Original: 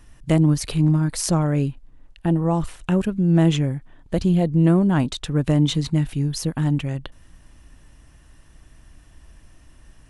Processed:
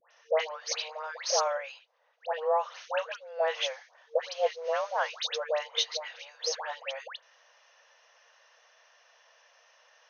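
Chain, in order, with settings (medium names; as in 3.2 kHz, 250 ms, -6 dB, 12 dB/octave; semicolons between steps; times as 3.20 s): 3.44–5.18 s: CVSD coder 64 kbps; FFT band-pass 460–6600 Hz; phase dispersion highs, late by 112 ms, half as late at 1.4 kHz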